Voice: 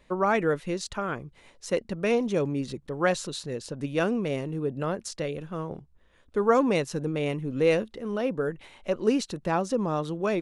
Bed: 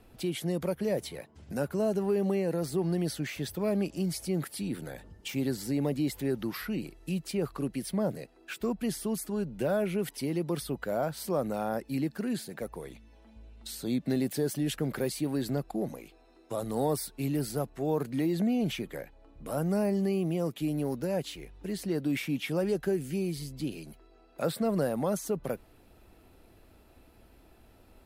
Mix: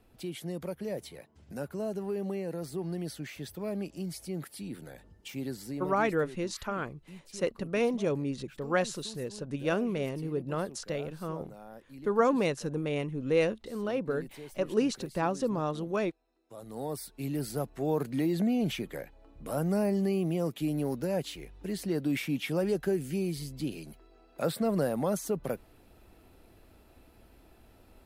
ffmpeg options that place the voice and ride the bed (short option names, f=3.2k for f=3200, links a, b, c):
-filter_complex "[0:a]adelay=5700,volume=-3.5dB[a];[1:a]volume=10.5dB,afade=t=out:st=5.62:d=0.54:silence=0.298538,afade=t=in:st=16.45:d=1.35:silence=0.149624[b];[a][b]amix=inputs=2:normalize=0"